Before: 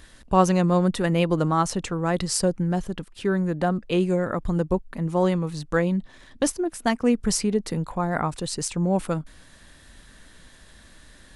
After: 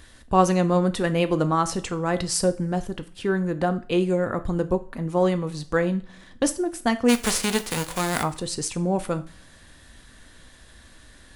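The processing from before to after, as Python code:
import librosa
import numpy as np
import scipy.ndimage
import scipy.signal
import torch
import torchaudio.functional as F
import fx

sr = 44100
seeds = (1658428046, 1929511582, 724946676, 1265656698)

y = fx.envelope_flatten(x, sr, power=0.3, at=(7.08, 8.22), fade=0.02)
y = fx.rev_double_slope(y, sr, seeds[0], early_s=0.38, late_s=1.8, knee_db=-27, drr_db=9.5)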